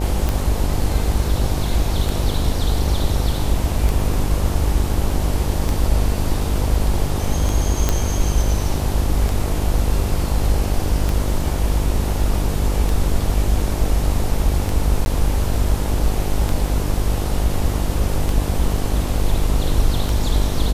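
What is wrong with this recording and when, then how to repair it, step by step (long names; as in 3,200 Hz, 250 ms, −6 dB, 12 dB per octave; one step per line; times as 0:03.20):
mains buzz 50 Hz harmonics 18 −23 dBFS
scratch tick 33 1/3 rpm
0:07.89: click −3 dBFS
0:15.05–0:15.06: drop-out 11 ms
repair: click removal
hum removal 50 Hz, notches 18
repair the gap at 0:15.05, 11 ms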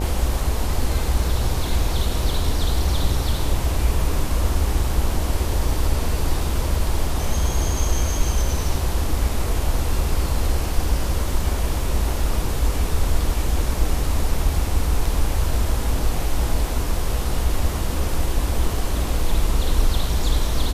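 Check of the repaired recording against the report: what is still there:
none of them is left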